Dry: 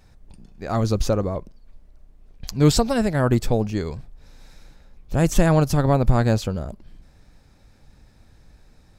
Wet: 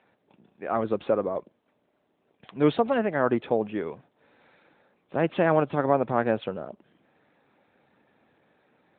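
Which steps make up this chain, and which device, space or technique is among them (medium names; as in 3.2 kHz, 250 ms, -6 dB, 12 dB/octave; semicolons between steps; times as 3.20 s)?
telephone (band-pass 320–3300 Hz; AMR-NB 12.2 kbps 8 kHz)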